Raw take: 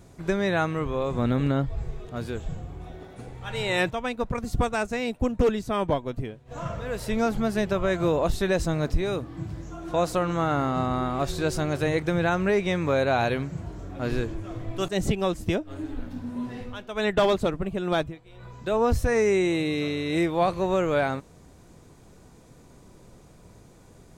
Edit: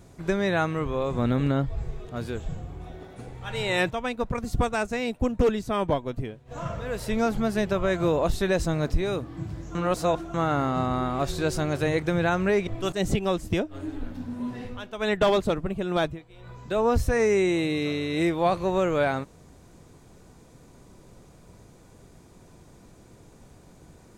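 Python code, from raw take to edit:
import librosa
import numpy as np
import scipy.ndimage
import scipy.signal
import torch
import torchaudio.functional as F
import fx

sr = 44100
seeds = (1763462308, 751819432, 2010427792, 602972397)

y = fx.edit(x, sr, fx.reverse_span(start_s=9.75, length_s=0.59),
    fx.cut(start_s=12.67, length_s=1.96), tone=tone)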